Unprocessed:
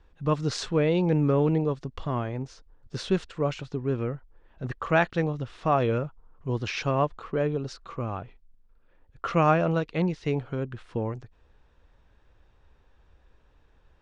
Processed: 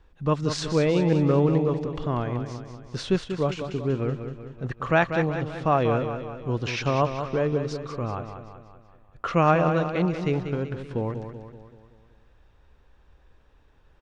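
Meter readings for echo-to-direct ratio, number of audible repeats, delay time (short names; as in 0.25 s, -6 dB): -7.0 dB, 5, 0.19 s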